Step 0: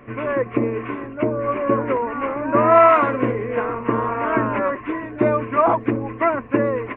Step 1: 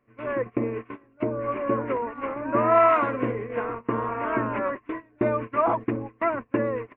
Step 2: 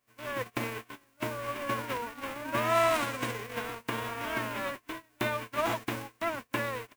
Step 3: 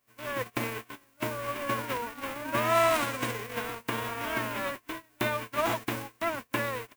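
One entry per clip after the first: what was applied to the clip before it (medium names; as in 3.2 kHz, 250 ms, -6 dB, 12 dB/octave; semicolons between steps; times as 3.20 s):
gate -25 dBFS, range -20 dB; trim -6 dB
formants flattened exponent 0.3; trim -7.5 dB
treble shelf 11 kHz +5 dB; trim +1.5 dB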